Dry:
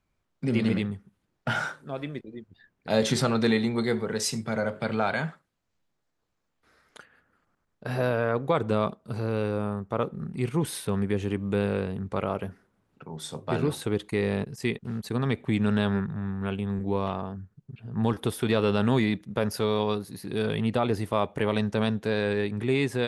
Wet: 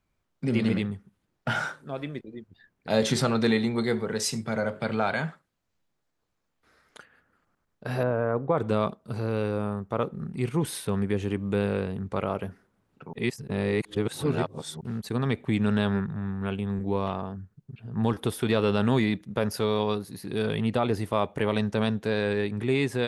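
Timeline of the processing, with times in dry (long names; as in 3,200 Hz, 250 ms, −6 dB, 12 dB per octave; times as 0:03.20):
0:08.03–0:08.58: low-pass filter 1,300 Hz
0:13.13–0:14.81: reverse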